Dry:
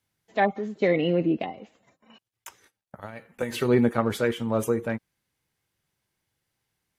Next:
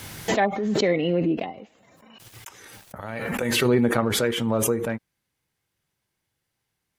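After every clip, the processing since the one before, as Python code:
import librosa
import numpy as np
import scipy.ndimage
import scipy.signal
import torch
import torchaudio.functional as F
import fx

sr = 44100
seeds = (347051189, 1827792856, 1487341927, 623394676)

y = fx.pre_swell(x, sr, db_per_s=28.0)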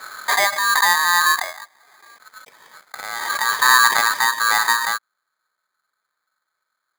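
y = np.convolve(x, np.full(32, 1.0 / 32))[:len(x)]
y = y * np.sign(np.sin(2.0 * np.pi * 1400.0 * np.arange(len(y)) / sr))
y = y * 10.0 ** (7.0 / 20.0)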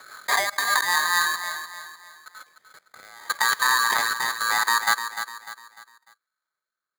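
y = fx.level_steps(x, sr, step_db=22)
y = fx.rotary_switch(y, sr, hz=5.0, then_hz=0.75, switch_at_s=0.93)
y = fx.echo_feedback(y, sr, ms=299, feedback_pct=39, wet_db=-9.5)
y = y * 10.0 ** (3.0 / 20.0)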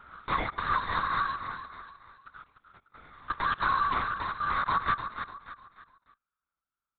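y = fx.air_absorb(x, sr, metres=260.0)
y = fx.fixed_phaser(y, sr, hz=1200.0, stages=8)
y = fx.lpc_vocoder(y, sr, seeds[0], excitation='whisper', order=8)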